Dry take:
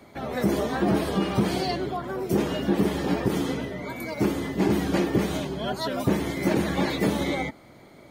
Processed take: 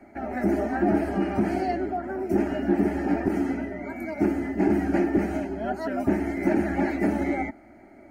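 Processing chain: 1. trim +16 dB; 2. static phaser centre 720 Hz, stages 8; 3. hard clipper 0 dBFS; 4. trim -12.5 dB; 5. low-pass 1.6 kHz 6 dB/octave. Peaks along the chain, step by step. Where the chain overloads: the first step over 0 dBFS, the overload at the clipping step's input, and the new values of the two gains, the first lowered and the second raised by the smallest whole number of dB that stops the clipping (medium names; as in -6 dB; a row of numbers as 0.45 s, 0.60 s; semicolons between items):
+4.5 dBFS, +4.0 dBFS, 0.0 dBFS, -12.5 dBFS, -12.5 dBFS; step 1, 4.0 dB; step 1 +12 dB, step 4 -8.5 dB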